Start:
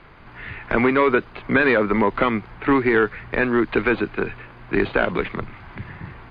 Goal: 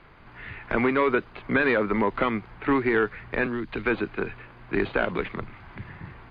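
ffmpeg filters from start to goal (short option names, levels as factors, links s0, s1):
-filter_complex "[0:a]asettb=1/sr,asplit=3[s0][s1][s2];[s0]atrim=end=3.464[s3];[s1]atrim=start=3.46:end=3.86,asetpts=PTS-STARTPTS,afade=t=in:d=0.004:c=qsin,afade=t=out:st=0.396:d=0.004:c=qsin,acrossover=split=210|3000[s4][s5][s6];[s5]acompressor=threshold=0.0447:ratio=6[s7];[s4][s7][s6]amix=inputs=3:normalize=0[s8];[s2]atrim=start=3.856[s9];[s3][s8]acrossfade=d=0.004:c1=hsin:c2=qsin[s10];[s10][s9]acrossfade=d=0.004:c1=qsin:c2=hsin,volume=0.562"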